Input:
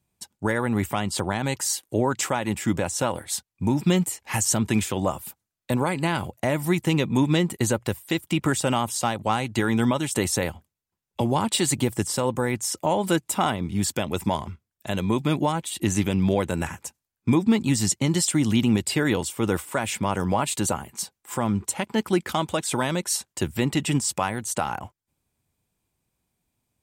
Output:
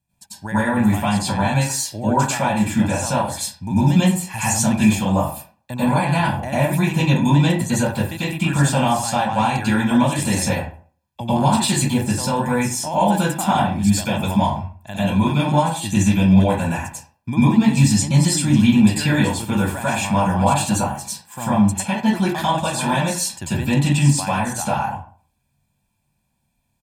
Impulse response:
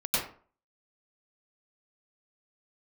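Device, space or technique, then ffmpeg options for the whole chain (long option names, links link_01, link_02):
microphone above a desk: -filter_complex "[0:a]aecho=1:1:1.2:0.65[link_01];[1:a]atrim=start_sample=2205[link_02];[link_01][link_02]afir=irnorm=-1:irlink=0,volume=-5dB"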